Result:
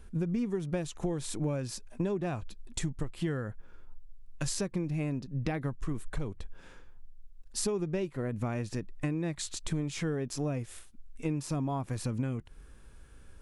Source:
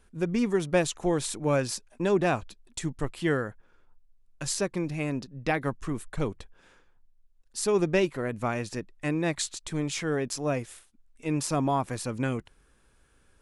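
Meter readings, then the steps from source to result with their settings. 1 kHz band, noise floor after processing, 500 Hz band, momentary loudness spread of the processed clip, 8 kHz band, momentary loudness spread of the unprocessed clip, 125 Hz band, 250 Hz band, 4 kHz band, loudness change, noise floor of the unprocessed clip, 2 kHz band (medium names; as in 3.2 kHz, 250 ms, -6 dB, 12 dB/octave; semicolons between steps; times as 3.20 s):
-10.5 dB, -53 dBFS, -8.0 dB, 7 LU, -5.0 dB, 10 LU, -0.5 dB, -4.0 dB, -6.0 dB, -5.5 dB, -63 dBFS, -10.5 dB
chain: bass shelf 240 Hz +9 dB; harmonic-percussive split harmonic +5 dB; compression 10:1, threshold -29 dBFS, peak gain reduction 18 dB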